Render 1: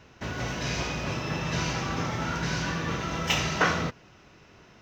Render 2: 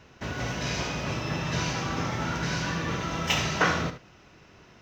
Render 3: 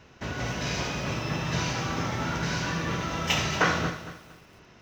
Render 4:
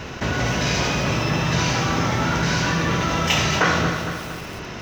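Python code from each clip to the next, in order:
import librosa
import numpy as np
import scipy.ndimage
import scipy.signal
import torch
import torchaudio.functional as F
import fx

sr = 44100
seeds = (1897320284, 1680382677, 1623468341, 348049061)

y1 = fx.room_early_taps(x, sr, ms=(60, 76), db=(-15.5, -13.5))
y2 = fx.echo_crushed(y1, sr, ms=229, feedback_pct=35, bits=8, wet_db=-12.5)
y3 = fx.env_flatten(y2, sr, amount_pct=50)
y3 = F.gain(torch.from_numpy(y3), 3.5).numpy()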